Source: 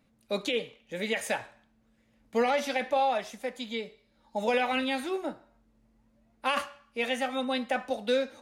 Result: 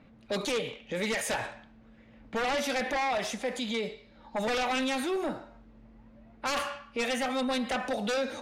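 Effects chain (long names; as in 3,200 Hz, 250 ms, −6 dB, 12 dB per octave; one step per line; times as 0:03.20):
sine wavefolder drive 8 dB, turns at −17 dBFS
low-pass that shuts in the quiet parts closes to 2,800 Hz, open at −20.5 dBFS
brickwall limiter −25.5 dBFS, peak gain reduction 9 dB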